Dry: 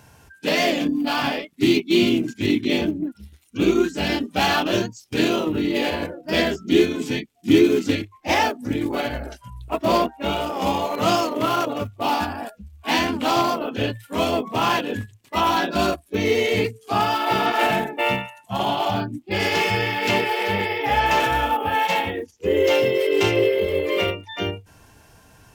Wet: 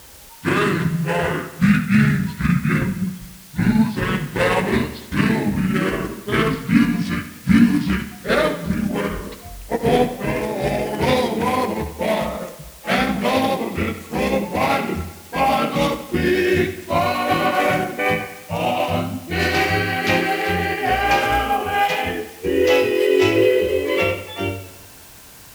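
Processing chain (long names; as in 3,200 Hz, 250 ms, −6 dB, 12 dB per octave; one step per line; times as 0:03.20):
pitch glide at a constant tempo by −9.5 semitones ending unshifted
in parallel at −8 dB: bit-depth reduction 6 bits, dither triangular
on the sum: pitch vibrato 3 Hz 6.5 cents
flutter between parallel walls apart 11.9 metres, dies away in 0.32 s
feedback echo with a swinging delay time 93 ms, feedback 60%, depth 52 cents, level −15 dB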